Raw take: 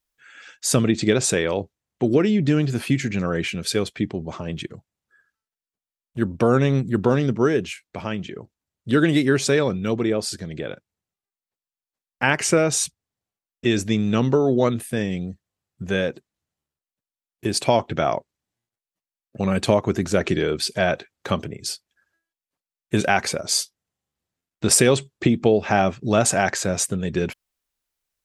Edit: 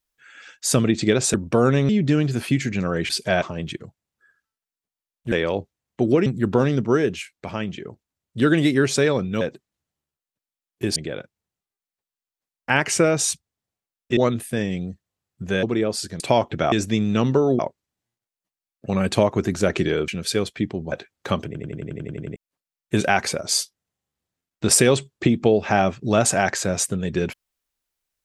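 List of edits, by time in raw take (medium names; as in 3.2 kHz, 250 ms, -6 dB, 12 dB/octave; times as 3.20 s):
1.34–2.28 s: swap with 6.22–6.77 s
3.48–4.32 s: swap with 20.59–20.92 s
9.92–10.49 s: swap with 16.03–17.58 s
13.70–14.57 s: move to 18.10 s
21.46 s: stutter in place 0.09 s, 10 plays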